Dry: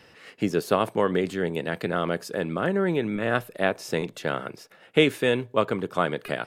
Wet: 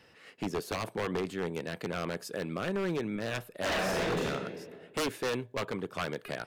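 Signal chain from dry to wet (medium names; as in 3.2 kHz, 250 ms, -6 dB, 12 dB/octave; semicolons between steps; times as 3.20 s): 2.19–2.97 s: treble shelf 4.1 kHz +4 dB; 3.56–4.24 s: reverb throw, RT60 1.7 s, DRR -6.5 dB; wavefolder -18.5 dBFS; trim -6.5 dB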